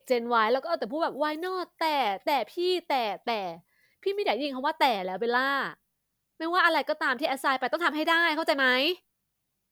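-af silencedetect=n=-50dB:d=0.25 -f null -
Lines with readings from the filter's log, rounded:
silence_start: 3.60
silence_end: 4.03 | silence_duration: 0.43
silence_start: 5.74
silence_end: 6.40 | silence_duration: 0.66
silence_start: 8.98
silence_end: 9.71 | silence_duration: 0.73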